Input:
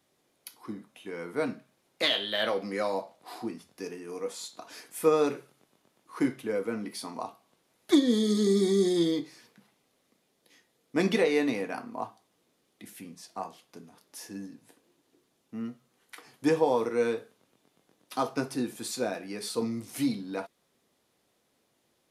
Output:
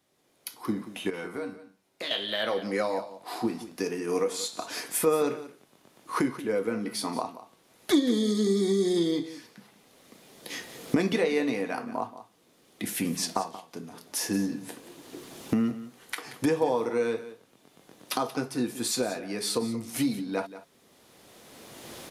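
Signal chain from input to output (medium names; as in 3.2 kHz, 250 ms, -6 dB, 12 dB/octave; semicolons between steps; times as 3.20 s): recorder AGC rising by 16 dB/s; 1.10–2.11 s: feedback comb 95 Hz, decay 0.31 s, harmonics all, mix 80%; delay 180 ms -14.5 dB; trim -1 dB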